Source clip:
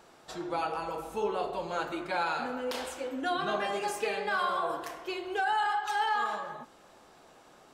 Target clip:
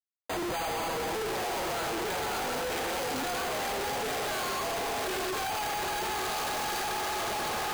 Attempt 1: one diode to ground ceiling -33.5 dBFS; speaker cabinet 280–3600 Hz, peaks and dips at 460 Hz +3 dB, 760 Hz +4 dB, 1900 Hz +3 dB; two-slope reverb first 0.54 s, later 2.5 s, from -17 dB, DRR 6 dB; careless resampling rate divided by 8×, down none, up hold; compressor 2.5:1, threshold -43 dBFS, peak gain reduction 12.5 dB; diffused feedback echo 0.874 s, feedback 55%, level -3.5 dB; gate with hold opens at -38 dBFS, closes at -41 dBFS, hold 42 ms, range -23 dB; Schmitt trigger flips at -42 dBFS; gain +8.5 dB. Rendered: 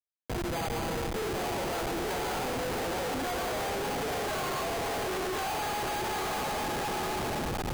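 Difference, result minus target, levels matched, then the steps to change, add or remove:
Schmitt trigger: distortion +4 dB
change: Schmitt trigger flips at -53.5 dBFS

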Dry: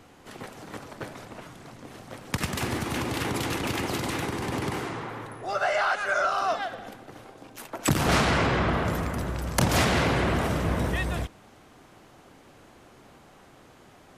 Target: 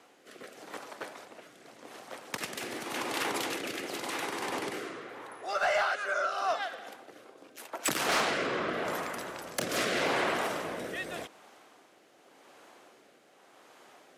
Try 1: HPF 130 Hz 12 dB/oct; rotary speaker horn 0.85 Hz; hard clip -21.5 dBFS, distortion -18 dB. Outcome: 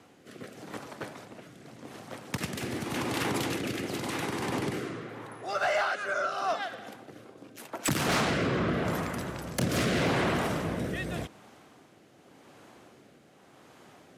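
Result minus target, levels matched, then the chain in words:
125 Hz band +14.5 dB
HPF 420 Hz 12 dB/oct; rotary speaker horn 0.85 Hz; hard clip -21.5 dBFS, distortion -22 dB

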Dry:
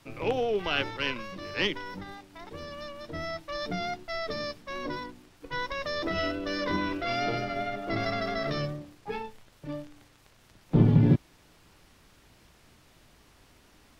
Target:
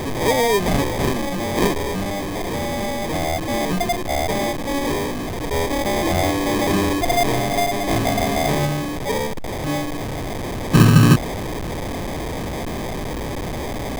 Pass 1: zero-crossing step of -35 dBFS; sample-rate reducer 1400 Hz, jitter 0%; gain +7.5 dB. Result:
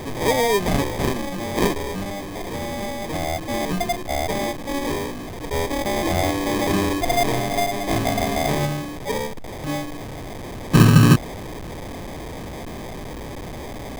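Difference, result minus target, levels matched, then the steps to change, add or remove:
zero-crossing step: distortion -6 dB
change: zero-crossing step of -28 dBFS

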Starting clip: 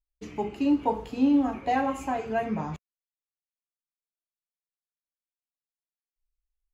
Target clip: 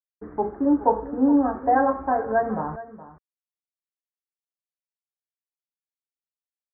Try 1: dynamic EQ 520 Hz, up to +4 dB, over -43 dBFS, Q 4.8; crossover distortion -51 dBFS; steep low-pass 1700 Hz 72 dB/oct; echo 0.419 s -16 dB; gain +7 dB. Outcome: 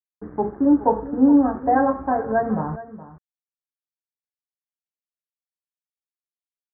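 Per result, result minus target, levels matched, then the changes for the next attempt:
crossover distortion: distortion +9 dB; 125 Hz band +4.0 dB
change: crossover distortion -60 dBFS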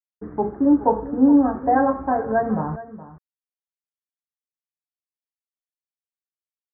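125 Hz band +4.5 dB
add after steep low-pass: bell 140 Hz -8.5 dB 2 oct

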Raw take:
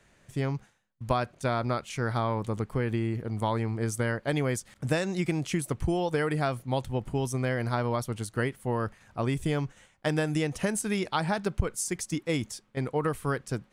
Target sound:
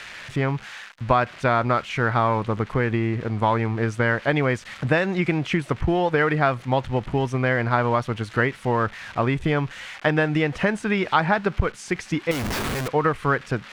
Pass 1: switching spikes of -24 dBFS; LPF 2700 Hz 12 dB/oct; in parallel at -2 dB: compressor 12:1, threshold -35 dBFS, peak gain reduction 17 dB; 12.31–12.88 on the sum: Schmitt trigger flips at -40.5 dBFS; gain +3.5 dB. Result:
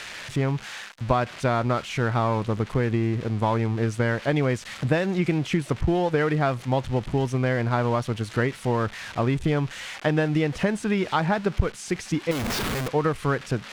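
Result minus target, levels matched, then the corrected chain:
switching spikes: distortion +7 dB; 2000 Hz band -3.5 dB
switching spikes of -31 dBFS; LPF 2700 Hz 12 dB/oct; bell 1700 Hz +7 dB 2.5 oct; in parallel at -2 dB: compressor 12:1, threshold -35 dBFS, peak gain reduction 17 dB; 12.31–12.88 on the sum: Schmitt trigger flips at -40.5 dBFS; gain +3.5 dB

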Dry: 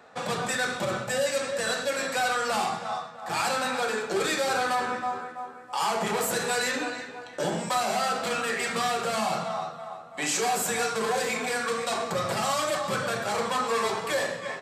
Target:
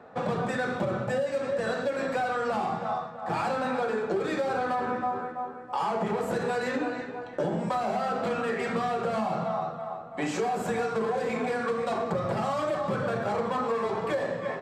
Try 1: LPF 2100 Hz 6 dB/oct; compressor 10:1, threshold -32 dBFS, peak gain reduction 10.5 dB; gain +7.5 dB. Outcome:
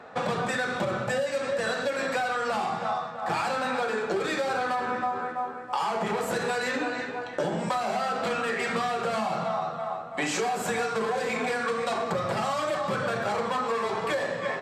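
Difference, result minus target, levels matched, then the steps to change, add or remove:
2000 Hz band +3.5 dB
change: LPF 580 Hz 6 dB/oct

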